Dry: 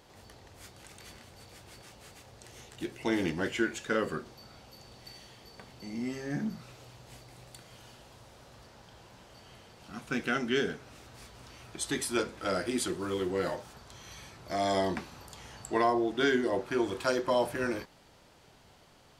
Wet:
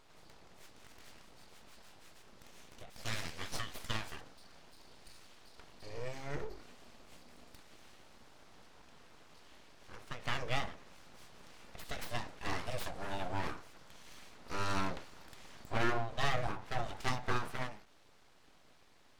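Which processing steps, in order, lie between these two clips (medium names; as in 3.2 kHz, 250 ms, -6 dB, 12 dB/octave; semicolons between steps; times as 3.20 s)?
2.90–4.21 s: tilt shelf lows -9.5 dB, about 1.3 kHz; full-wave rectifier; treble shelf 7.6 kHz -7.5 dB; endings held to a fixed fall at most 120 dB/s; trim -2.5 dB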